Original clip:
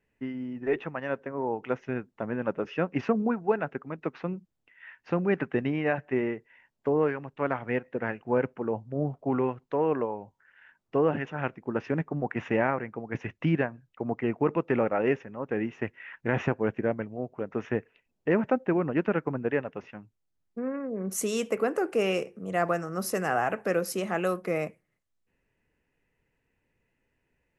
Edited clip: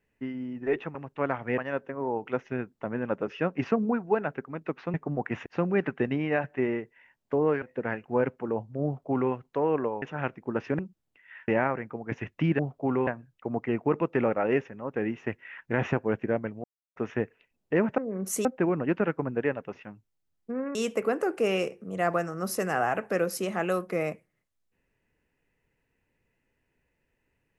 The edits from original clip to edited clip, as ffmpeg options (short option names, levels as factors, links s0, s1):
-filter_complex "[0:a]asplit=16[s0][s1][s2][s3][s4][s5][s6][s7][s8][s9][s10][s11][s12][s13][s14][s15];[s0]atrim=end=0.952[s16];[s1]atrim=start=7.158:end=7.792[s17];[s2]atrim=start=0.948:end=4.312[s18];[s3]atrim=start=11.988:end=12.512[s19];[s4]atrim=start=4.998:end=7.162[s20];[s5]atrim=start=7.788:end=10.192[s21];[s6]atrim=start=11.218:end=11.992[s22];[s7]atrim=start=4.308:end=5.002[s23];[s8]atrim=start=12.508:end=13.622[s24];[s9]atrim=start=9.018:end=9.502[s25];[s10]atrim=start=13.618:end=17.19,asetpts=PTS-STARTPTS,afade=t=out:st=3.568:d=0.004:c=hsin[s26];[s11]atrim=start=17.19:end=17.51,asetpts=PTS-STARTPTS,volume=0[s27];[s12]atrim=start=17.51:end=18.532,asetpts=PTS-STARTPTS,afade=t=in:d=0.004:c=hsin[s28];[s13]atrim=start=20.828:end=21.302[s29];[s14]atrim=start=18.528:end=20.832[s30];[s15]atrim=start=21.298[s31];[s16][s17]acrossfade=d=0.004:c1=hsin:c2=hsin[s32];[s32][s18]acrossfade=d=0.004:c1=hsin:c2=hsin[s33];[s33][s19]acrossfade=d=0.004:c1=hsin:c2=hsin[s34];[s34][s20]acrossfade=d=0.004:c1=hsin:c2=hsin[s35];[s35][s21]acrossfade=d=0.004:c1=hsin:c2=hsin[s36];[s36][s22]acrossfade=d=0.004:c1=hsin:c2=hsin[s37];[s37][s23]acrossfade=d=0.004:c1=hsin:c2=hsin[s38];[s38][s24]acrossfade=d=0.004:c1=hsin:c2=hsin[s39];[s39][s25]acrossfade=d=0.004:c1=hsin:c2=hsin[s40];[s26][s27][s28]concat=n=3:v=0:a=1[s41];[s40][s41]acrossfade=d=0.004:c1=hsin:c2=hsin[s42];[s42][s29]acrossfade=d=0.004:c1=hsin:c2=hsin[s43];[s43][s30]acrossfade=d=0.004:c1=hsin:c2=hsin[s44];[s44][s31]acrossfade=d=0.004:c1=hsin:c2=hsin"